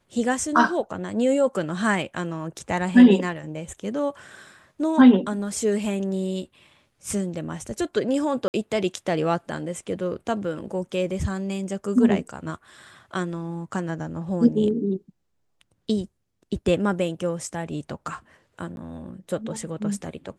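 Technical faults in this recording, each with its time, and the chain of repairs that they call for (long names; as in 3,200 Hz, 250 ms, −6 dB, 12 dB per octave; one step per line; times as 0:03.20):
0:08.48–0:08.54: drop-out 59 ms
0:18.76–0:18.77: drop-out 11 ms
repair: repair the gap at 0:08.48, 59 ms
repair the gap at 0:18.76, 11 ms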